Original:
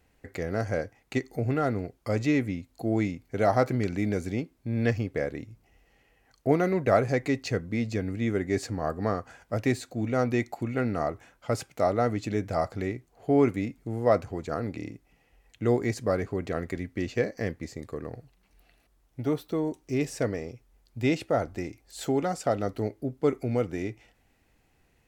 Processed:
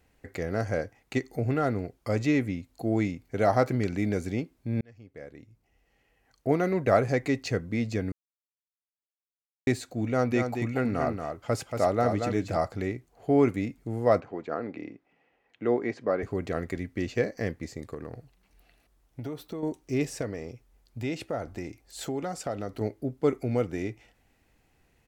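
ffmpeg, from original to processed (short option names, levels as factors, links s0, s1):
-filter_complex "[0:a]asplit=3[s0][s1][s2];[s0]afade=t=out:st=10.3:d=0.02[s3];[s1]aecho=1:1:231:0.501,afade=t=in:st=10.3:d=0.02,afade=t=out:st=12.56:d=0.02[s4];[s2]afade=t=in:st=12.56:d=0.02[s5];[s3][s4][s5]amix=inputs=3:normalize=0,asettb=1/sr,asplit=3[s6][s7][s8];[s6]atrim=end=14.204[s9];[s7]atrim=start=14.2:end=16.23,asetpts=PTS-STARTPTS,afade=t=in:d=0.004:c=qsin,afade=t=out:st=2.026:d=0.004:c=qsin,highpass=240,lowpass=2600[s10];[s8]atrim=start=16.226[s11];[s9][s10]acrossfade=d=0.004:c1=hsin:c2=qsin[s12];[s12][s11]acrossfade=d=0.004:c1=qsin:c2=hsin,asettb=1/sr,asplit=3[s13][s14][s15];[s13]atrim=end=17.944[s16];[s14]atrim=start=17.94:end=19.63,asetpts=PTS-STARTPTS,afade=t=in:d=0.004:c=qsin,afade=t=out:st=1.686:d=0.004:c=qsin,acompressor=threshold=0.0251:ratio=6:attack=3.2:release=140:knee=1:detection=peak[s17];[s15]atrim=start=19.626[s18];[s16][s17]acrossfade=d=0.004:c1=hsin:c2=qsin[s19];[s19][s18]acrossfade=d=0.004:c1=qsin:c2=hsin,asettb=1/sr,asplit=3[s20][s21][s22];[s20]atrim=end=20.214[s23];[s21]atrim=start=20.21:end=22.81,asetpts=PTS-STARTPTS,afade=t=in:d=0.004:c=qsin,afade=t=out:st=2.596:d=0.004:c=qsin,acompressor=threshold=0.0251:ratio=2:attack=3.2:release=140:knee=1:detection=peak[s24];[s22]atrim=start=22.806[s25];[s23][s24]acrossfade=d=0.004:c1=hsin:c2=qsin[s26];[s26][s25]acrossfade=d=0.004:c1=qsin:c2=hsin,asplit=4[s27][s28][s29][s30];[s27]atrim=end=4.81,asetpts=PTS-STARTPTS,afade=t=out:st=4.806:d=0.004:c=hsin[s31];[s28]atrim=start=4.81:end=8.12,asetpts=PTS-STARTPTS,afade=t=in:d=2.1,afade=t=out:st=3.306:d=0.004:c=hsin[s32];[s29]atrim=start=8.12:end=9.67,asetpts=PTS-STARTPTS,volume=0[s33];[s30]atrim=start=9.67,asetpts=PTS-STARTPTS,afade=t=in:d=0.004:c=hsin[s34];[s31][s32][s33][s34]concat=n=4:v=0:a=1"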